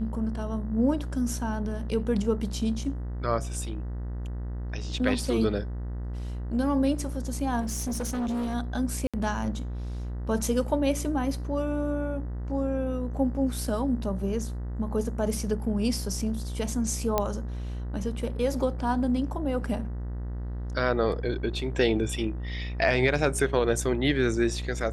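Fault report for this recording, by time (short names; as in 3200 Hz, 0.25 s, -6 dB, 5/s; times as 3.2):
buzz 60 Hz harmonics 33 -33 dBFS
7.6–8.55 clipped -26.5 dBFS
9.07–9.14 gap 66 ms
17.18 pop -10 dBFS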